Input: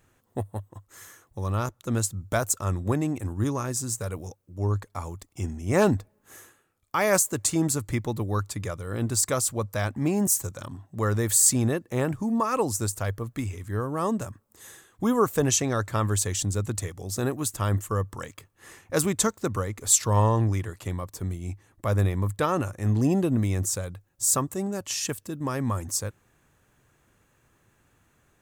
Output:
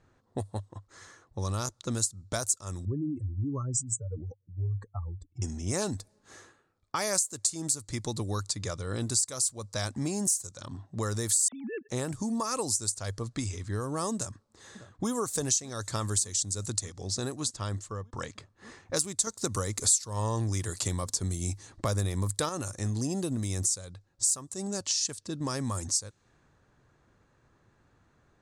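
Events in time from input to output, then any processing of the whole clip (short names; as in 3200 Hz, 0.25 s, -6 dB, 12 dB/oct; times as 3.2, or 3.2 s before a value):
2.85–5.42 spectral contrast raised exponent 2.8
11.48–11.89 sine-wave speech
14.15–15.1 echo throw 0.6 s, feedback 75%, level -17 dB
16.93–18.13 fade out, to -15 dB
19.27–22.49 gain +7.5 dB
whole clip: low-pass opened by the level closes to 1700 Hz, open at -22 dBFS; band shelf 6300 Hz +16 dB; compressor 4:1, threshold -29 dBFS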